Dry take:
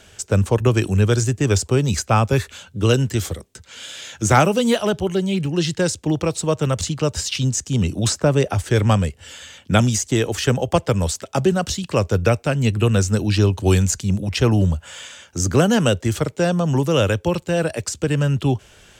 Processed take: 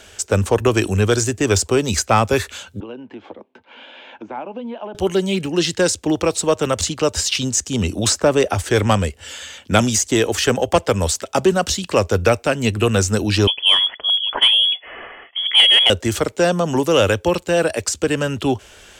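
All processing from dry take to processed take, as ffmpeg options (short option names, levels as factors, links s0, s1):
-filter_complex "[0:a]asettb=1/sr,asplit=3[s0][s1][s2];[s0]atrim=end=2.804[s3];[s1]atrim=start=2.8:end=4.95,asetpts=PTS-STARTPTS,afade=t=in:d=0.004:c=qsin,afade=t=out:st=2.146:d=0.004:c=qsin,acompressor=threshold=0.0282:ratio=5:attack=3.2:release=140:knee=1:detection=peak,highpass=f=170:w=0.5412,highpass=f=170:w=1.3066,equalizer=f=170:t=q:w=4:g=-9,equalizer=f=250:t=q:w=4:g=4,equalizer=f=430:t=q:w=4:g=-4,equalizer=f=900:t=q:w=4:g=7,equalizer=f=1300:t=q:w=4:g=-8,equalizer=f=1900:t=q:w=4:g=-10,lowpass=f=2400:w=0.5412,lowpass=f=2400:w=1.3066[s4];[s2]atrim=start=4.946[s5];[s3][s4]acrossfade=d=0.004:c1=hsin:c2=qsin[s6];[s6][s5]acrossfade=d=0.004:c1=qsin:c2=hsin,asettb=1/sr,asplit=3[s7][s8][s9];[s7]atrim=end=13.474[s10];[s8]atrim=start=13.47:end=15.9,asetpts=PTS-STARTPTS,afade=t=in:d=0.004:c=qsin,afade=t=out:st=2.426:d=0.004:c=qsin,highpass=f=140:w=0.5412,highpass=f=140:w=1.3066,lowpass=f=3000:t=q:w=0.5098,lowpass=f=3000:t=q:w=0.6013,lowpass=f=3000:t=q:w=0.9,lowpass=f=3000:t=q:w=2.563,afreqshift=-3500[s11];[s9]atrim=start=15.896[s12];[s10][s11]acrossfade=d=0.004:c1=hsin:c2=qsin[s13];[s13][s12]acrossfade=d=0.004:c1=qsin:c2=hsin,equalizer=f=140:w=2.4:g=-11,acontrast=54,bass=f=250:g=-3,treble=f=4000:g=0,volume=0.891"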